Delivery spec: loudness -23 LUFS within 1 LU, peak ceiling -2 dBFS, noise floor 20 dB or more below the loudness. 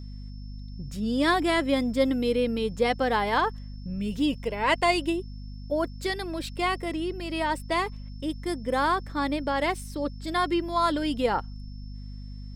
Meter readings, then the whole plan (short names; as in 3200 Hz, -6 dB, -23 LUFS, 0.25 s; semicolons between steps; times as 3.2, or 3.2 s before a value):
hum 50 Hz; harmonics up to 250 Hz; hum level -36 dBFS; steady tone 5300 Hz; tone level -56 dBFS; loudness -27.0 LUFS; peak -10.0 dBFS; loudness target -23.0 LUFS
-> de-hum 50 Hz, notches 5; notch 5300 Hz, Q 30; gain +4 dB